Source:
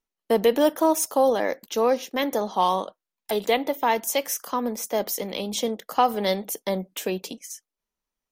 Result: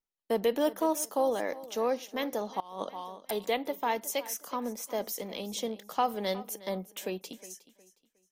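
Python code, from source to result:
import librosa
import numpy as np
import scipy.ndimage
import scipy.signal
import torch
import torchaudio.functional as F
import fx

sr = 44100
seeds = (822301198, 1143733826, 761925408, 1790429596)

y = fx.echo_feedback(x, sr, ms=362, feedback_pct=29, wet_db=-17.5)
y = fx.over_compress(y, sr, threshold_db=-29.0, ratio=-0.5, at=(2.6, 3.31))
y = F.gain(torch.from_numpy(y), -8.0).numpy()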